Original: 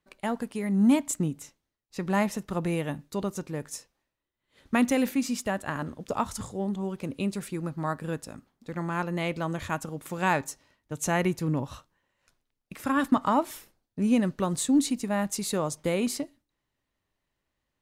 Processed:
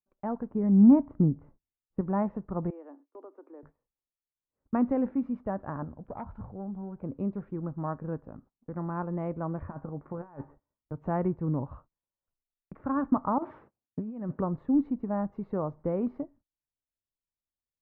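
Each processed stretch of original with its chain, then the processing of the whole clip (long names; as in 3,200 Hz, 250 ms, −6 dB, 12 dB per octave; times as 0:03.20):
0:00.51–0:02.01: low-pass filter 2,600 Hz + low-shelf EQ 420 Hz +8 dB
0:02.70–0:03.63: Butterworth high-pass 260 Hz 96 dB per octave + downward compressor 2 to 1, threshold −49 dBFS
0:05.84–0:07.04: phase distortion by the signal itself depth 0.28 ms + downward compressor 1.5 to 1, threshold −40 dBFS + comb filter 1.3 ms, depth 32%
0:09.61–0:10.95: low-pass filter 2,300 Hz 24 dB per octave + compressor whose output falls as the input rises −32 dBFS, ratio −0.5 + tuned comb filter 72 Hz, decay 0.15 s
0:13.38–0:14.41: high-pass filter 100 Hz + high-shelf EQ 2,200 Hz +5.5 dB + compressor whose output falls as the input rises −32 dBFS
whole clip: low-pass filter 1,200 Hz 24 dB per octave; noise gate −53 dBFS, range −20 dB; low-shelf EQ 86 Hz +7 dB; level −3 dB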